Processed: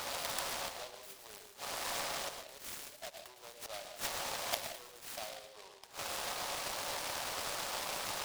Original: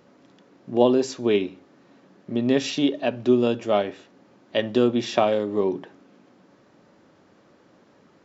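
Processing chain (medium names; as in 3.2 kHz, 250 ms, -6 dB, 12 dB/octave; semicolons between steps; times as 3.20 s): in parallel at -5.5 dB: sine folder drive 7 dB, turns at -4 dBFS; on the sum: compression 4:1, threshold -25 dBFS, peak gain reduction 15 dB; inverted gate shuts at -27 dBFS, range -28 dB; inverse Chebyshev high-pass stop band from 210 Hz, stop band 60 dB; on a send at -5 dB: reverberation RT60 0.45 s, pre-delay 102 ms; on the sum: delay time shaken by noise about 3.2 kHz, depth 0.15 ms; trim +13.5 dB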